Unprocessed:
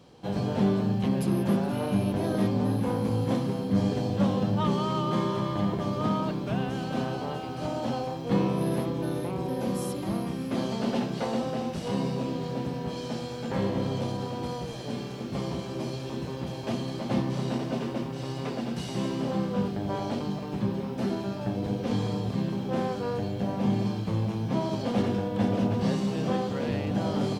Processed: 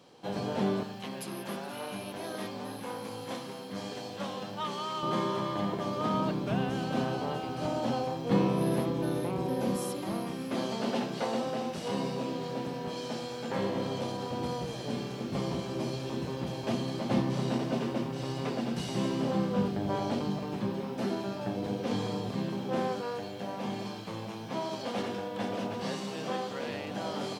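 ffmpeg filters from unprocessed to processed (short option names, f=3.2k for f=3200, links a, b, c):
-af "asetnsamples=n=441:p=0,asendcmd='0.83 highpass f 1300;5.03 highpass f 340;6.14 highpass f 110;9.76 highpass f 320;14.31 highpass f 99;20.53 highpass f 270;23.01 highpass f 720',highpass=f=370:p=1"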